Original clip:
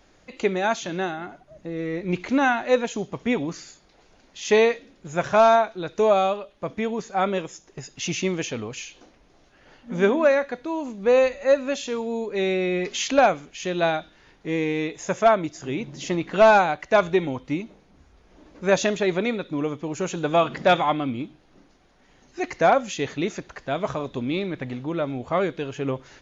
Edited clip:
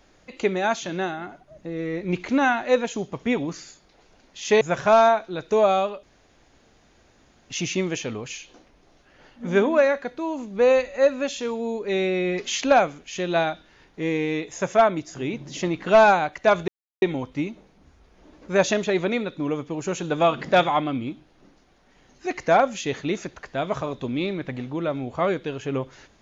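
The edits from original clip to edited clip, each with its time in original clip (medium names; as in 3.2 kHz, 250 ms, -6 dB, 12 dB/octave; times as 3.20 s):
4.61–5.08 s: delete
6.50–7.97 s: room tone
17.15 s: insert silence 0.34 s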